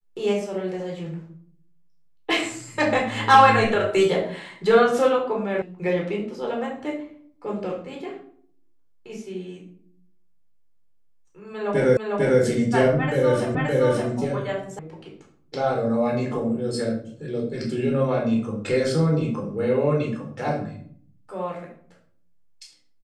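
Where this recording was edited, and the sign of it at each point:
5.62 sound cut off
11.97 repeat of the last 0.45 s
13.55 repeat of the last 0.57 s
14.79 sound cut off

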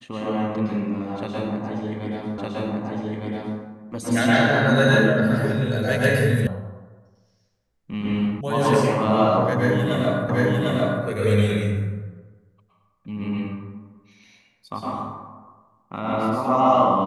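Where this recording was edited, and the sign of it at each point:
2.38 repeat of the last 1.21 s
6.47 sound cut off
8.41 sound cut off
10.29 repeat of the last 0.75 s

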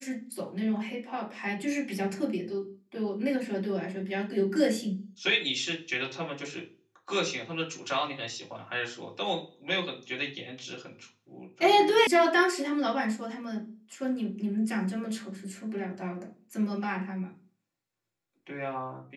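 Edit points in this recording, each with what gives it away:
12.07 sound cut off

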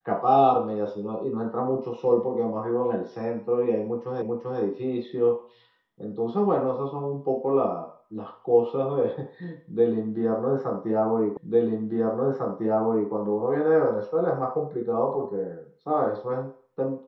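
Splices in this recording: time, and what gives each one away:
4.22 repeat of the last 0.39 s
11.37 repeat of the last 1.75 s

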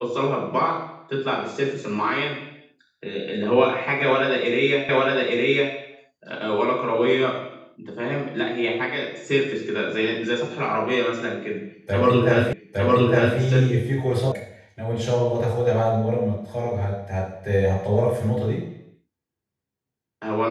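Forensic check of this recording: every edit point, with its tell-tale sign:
4.89 repeat of the last 0.86 s
12.53 repeat of the last 0.86 s
14.32 sound cut off

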